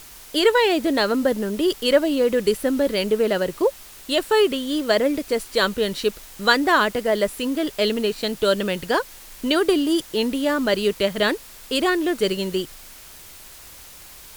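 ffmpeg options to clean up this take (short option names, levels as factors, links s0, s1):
-af "afftdn=nr=23:nf=-43"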